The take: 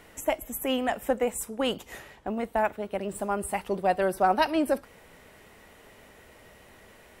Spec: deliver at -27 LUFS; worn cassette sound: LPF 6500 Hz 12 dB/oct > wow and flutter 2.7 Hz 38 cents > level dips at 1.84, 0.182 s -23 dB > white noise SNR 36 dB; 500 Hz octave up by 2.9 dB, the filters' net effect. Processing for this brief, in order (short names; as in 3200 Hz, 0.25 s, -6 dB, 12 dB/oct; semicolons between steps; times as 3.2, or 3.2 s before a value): LPF 6500 Hz 12 dB/oct; bell 500 Hz +3.5 dB; wow and flutter 2.7 Hz 38 cents; level dips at 1.84, 0.182 s -23 dB; white noise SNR 36 dB; gain -0.5 dB